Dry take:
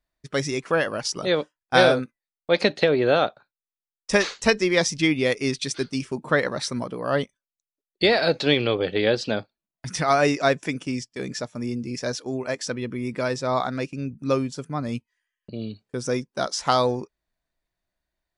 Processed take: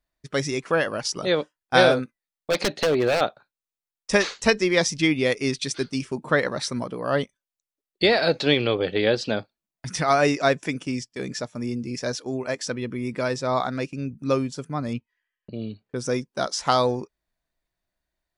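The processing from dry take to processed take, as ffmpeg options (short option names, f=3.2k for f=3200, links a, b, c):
-filter_complex "[0:a]asettb=1/sr,asplit=3[a][b][c];[a]atrim=end=1.924[d];[b]atrim=start=1.92:end=3.21,asetpts=PTS-STARTPTS,afade=t=in:d=0.004:c=qsin,afade=t=out:st=1.286:d=0.004:c=qsin,aeval=exprs='0.188*(abs(mod(val(0)/0.188+3,4)-2)-1)':c=same[e];[c]atrim=start=3.206[f];[d][e]acrossfade=d=0.004:c1=hsin:c2=qsin[g];[g][f]acrossfade=d=0.004:c1=qsin:c2=hsin,asettb=1/sr,asplit=3[h][i][j];[h]atrim=end=14.934[k];[i]atrim=start=14.93:end=15.96,asetpts=PTS-STARTPTS,afade=t=in:d=0.004:c=qsin,afade=t=out:st=1.026:d=0.004:c=qsin,lowpass=3.4k[l];[j]atrim=start=15.956[m];[k][l]acrossfade=d=0.004:c1=hsin:c2=qsin[n];[n][m]acrossfade=d=0.004:c1=qsin:c2=hsin"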